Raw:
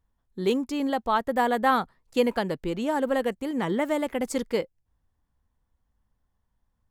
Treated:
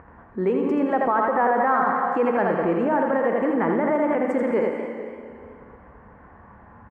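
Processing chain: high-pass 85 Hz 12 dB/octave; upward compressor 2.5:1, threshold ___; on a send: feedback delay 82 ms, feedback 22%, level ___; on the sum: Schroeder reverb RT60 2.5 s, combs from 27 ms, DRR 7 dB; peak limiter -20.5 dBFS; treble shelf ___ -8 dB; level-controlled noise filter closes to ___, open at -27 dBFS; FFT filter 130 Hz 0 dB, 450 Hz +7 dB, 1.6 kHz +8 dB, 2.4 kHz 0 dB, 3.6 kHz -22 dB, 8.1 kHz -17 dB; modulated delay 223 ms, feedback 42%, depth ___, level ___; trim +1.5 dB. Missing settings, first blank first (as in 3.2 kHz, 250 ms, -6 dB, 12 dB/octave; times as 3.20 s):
-33 dBFS, -5 dB, 9.3 kHz, 3 kHz, 161 cents, -14 dB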